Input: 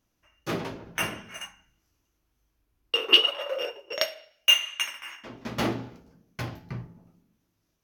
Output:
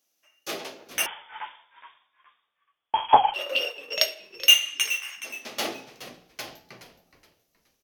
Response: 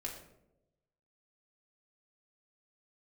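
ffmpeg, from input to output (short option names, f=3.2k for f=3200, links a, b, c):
-filter_complex "[0:a]highpass=760,equalizer=f=1.4k:w=0.74:g=-12,bandreject=f=970:w=8.3,asplit=4[a][b][c][d];[b]adelay=421,afreqshift=-90,volume=-13dB[e];[c]adelay=842,afreqshift=-180,volume=-23.2dB[f];[d]adelay=1263,afreqshift=-270,volume=-33.3dB[g];[a][e][f][g]amix=inputs=4:normalize=0,asettb=1/sr,asplit=3[h][i][j];[h]atrim=end=1.064[k];[i]atrim=start=1.06:end=3.34,asetpts=PTS-STARTPTS,afade=t=in:d=0.004:c=qsin,afade=t=out:st=2.276:d=0.004:c=qsin,lowpass=f=3.1k:t=q:w=0.5098,lowpass=f=3.1k:t=q:w=0.6013,lowpass=f=3.1k:t=q:w=0.9,lowpass=f=3.1k:t=q:w=2.563,afreqshift=-3700[l];[j]atrim=start=3.336[m];[k][l]acrossfade=d=0.004:c1=hsin:c2=qsin[n];[n][m]acrossfade=d=0.004:c1=qsin:c2=hsin,volume=8.5dB"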